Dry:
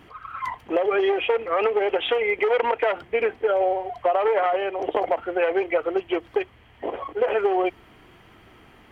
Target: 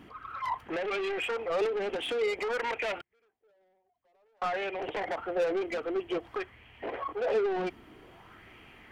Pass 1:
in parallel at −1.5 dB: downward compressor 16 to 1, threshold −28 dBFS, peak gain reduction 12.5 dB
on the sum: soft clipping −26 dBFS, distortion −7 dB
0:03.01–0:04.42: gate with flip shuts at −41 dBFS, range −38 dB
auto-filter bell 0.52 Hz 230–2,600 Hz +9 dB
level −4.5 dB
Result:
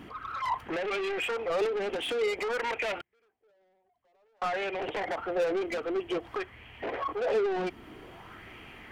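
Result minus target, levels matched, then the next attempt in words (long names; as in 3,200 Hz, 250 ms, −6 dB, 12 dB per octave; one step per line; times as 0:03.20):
downward compressor: peak gain reduction +12.5 dB
soft clipping −26 dBFS, distortion −8 dB
0:03.01–0:04.42: gate with flip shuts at −41 dBFS, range −38 dB
auto-filter bell 0.52 Hz 230–2,600 Hz +9 dB
level −4.5 dB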